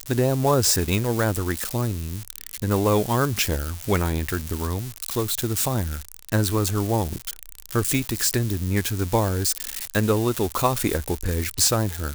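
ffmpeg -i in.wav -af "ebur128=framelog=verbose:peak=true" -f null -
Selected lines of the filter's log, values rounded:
Integrated loudness:
  I:         -23.4 LUFS
  Threshold: -33.6 LUFS
Loudness range:
  LRA:         2.6 LU
  Threshold: -44.1 LUFS
  LRA low:   -25.3 LUFS
  LRA high:  -22.8 LUFS
True peak:
  Peak:       -5.6 dBFS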